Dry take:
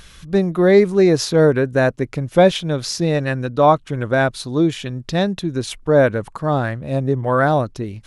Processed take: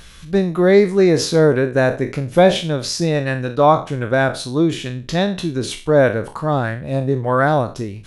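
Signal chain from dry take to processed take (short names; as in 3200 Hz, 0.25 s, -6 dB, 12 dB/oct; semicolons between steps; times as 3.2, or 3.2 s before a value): spectral trails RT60 0.34 s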